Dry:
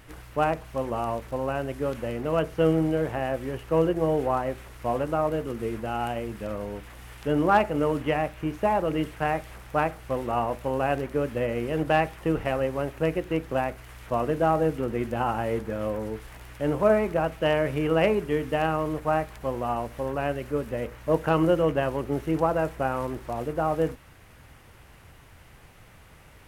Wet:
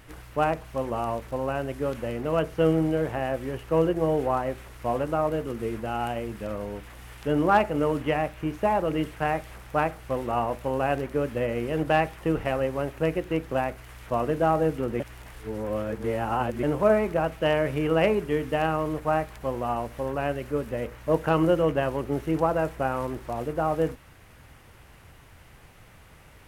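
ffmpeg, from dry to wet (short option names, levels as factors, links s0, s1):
-filter_complex "[0:a]asplit=3[s0][s1][s2];[s0]atrim=end=15.002[s3];[s1]atrim=start=14.998:end=16.632,asetpts=PTS-STARTPTS,areverse[s4];[s2]atrim=start=16.628[s5];[s3][s4]acrossfade=d=0.004:c1=hsin:c2=hsin[s6];[s6][s5]acrossfade=d=0.004:c1=hsin:c2=hsin"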